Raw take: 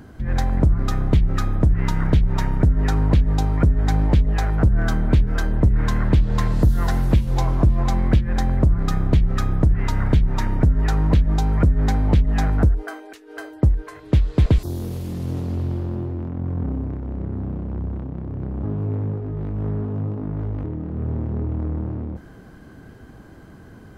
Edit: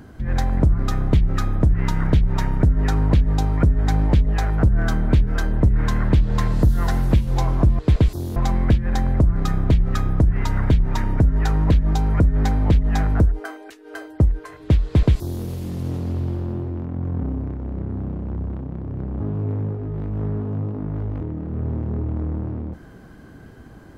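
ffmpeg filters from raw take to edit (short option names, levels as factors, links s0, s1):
-filter_complex "[0:a]asplit=3[s0][s1][s2];[s0]atrim=end=7.792[s3];[s1]atrim=start=14.288:end=14.862[s4];[s2]atrim=start=7.788[s5];[s3][s4]acrossfade=d=0.004:c1=hsin:c2=hsin[s6];[s6][s5]acrossfade=d=0.004:c1=hsin:c2=hsin"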